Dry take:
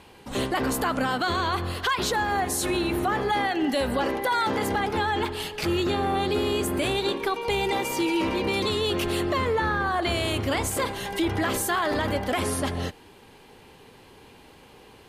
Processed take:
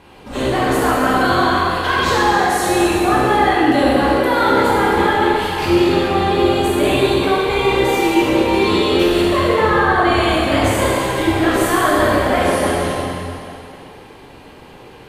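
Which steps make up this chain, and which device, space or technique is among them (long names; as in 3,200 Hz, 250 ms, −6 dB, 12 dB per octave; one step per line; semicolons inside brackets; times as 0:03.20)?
swimming-pool hall (convolution reverb RT60 2.7 s, pre-delay 13 ms, DRR −7.5 dB; high-shelf EQ 3,300 Hz −7.5 dB)
level +3.5 dB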